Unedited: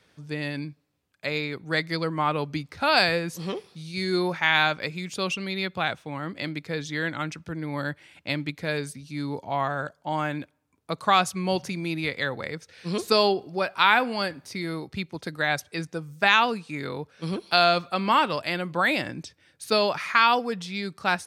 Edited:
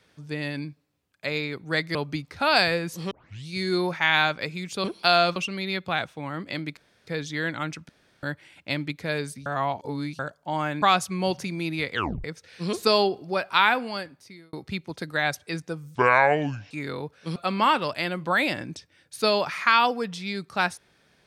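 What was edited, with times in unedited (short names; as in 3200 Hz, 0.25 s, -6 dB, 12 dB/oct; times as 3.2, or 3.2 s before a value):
1.95–2.36 cut
3.52 tape start 0.36 s
6.66 insert room tone 0.30 s
7.48–7.82 room tone
9.05–9.78 reverse
10.41–11.07 cut
12.18 tape stop 0.31 s
13.82–14.78 fade out
16.2–16.67 speed 62%
17.32–17.84 move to 5.25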